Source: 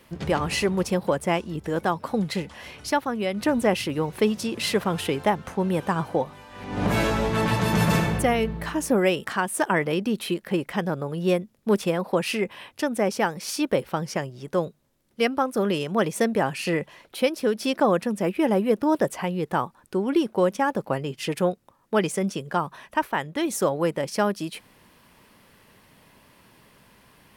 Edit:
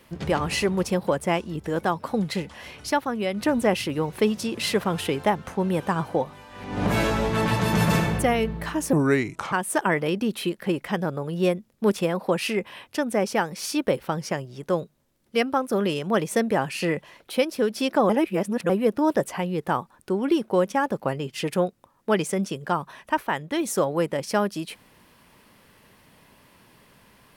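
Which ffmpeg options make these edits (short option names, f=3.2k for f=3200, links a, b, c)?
-filter_complex "[0:a]asplit=5[a][b][c][d][e];[a]atrim=end=8.934[f];[b]atrim=start=8.93:end=9.37,asetpts=PTS-STARTPTS,asetrate=32634,aresample=44100[g];[c]atrim=start=9.366:end=17.942[h];[d]atrim=start=17.938:end=18.542,asetpts=PTS-STARTPTS,areverse[i];[e]atrim=start=18.538[j];[f][g]acrossfade=d=0.004:c1=hsin:c2=hsin[k];[k][h]acrossfade=d=0.004:c1=hsin:c2=hsin[l];[l][i]acrossfade=d=0.004:c1=hsin:c2=hsin[m];[m][j]acrossfade=d=0.004:c1=hsin:c2=hsin"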